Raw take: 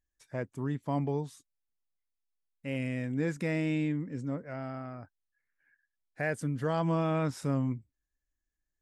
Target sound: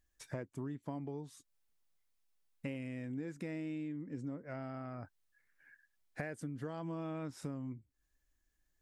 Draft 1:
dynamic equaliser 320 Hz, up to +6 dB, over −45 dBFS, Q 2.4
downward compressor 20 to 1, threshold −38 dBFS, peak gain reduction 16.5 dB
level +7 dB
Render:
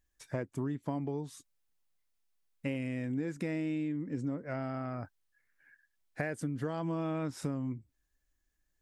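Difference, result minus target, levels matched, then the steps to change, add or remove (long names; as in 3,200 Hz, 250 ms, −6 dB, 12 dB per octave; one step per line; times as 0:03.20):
downward compressor: peak gain reduction −6.5 dB
change: downward compressor 20 to 1, threshold −45 dBFS, peak gain reduction 23 dB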